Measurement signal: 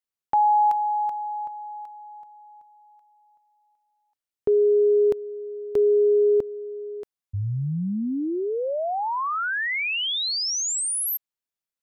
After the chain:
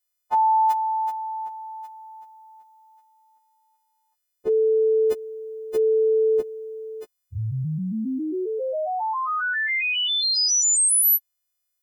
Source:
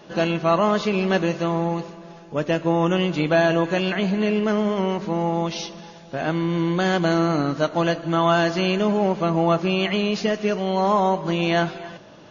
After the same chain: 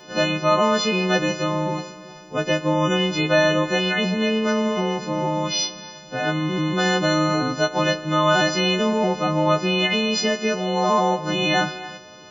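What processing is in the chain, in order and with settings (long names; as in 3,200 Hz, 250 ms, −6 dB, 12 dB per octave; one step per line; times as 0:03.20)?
every partial snapped to a pitch grid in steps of 3 semitones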